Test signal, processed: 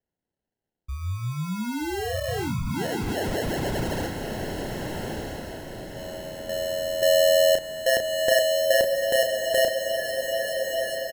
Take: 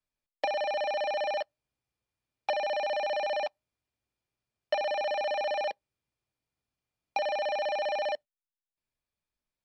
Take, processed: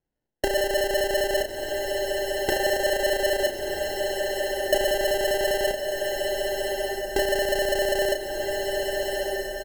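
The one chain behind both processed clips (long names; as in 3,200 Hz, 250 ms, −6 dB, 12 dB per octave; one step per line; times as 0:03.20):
decimation without filtering 37×
double-tracking delay 33 ms −6.5 dB
feedback delay with all-pass diffusion 1,249 ms, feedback 43%, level −3 dB
level +5.5 dB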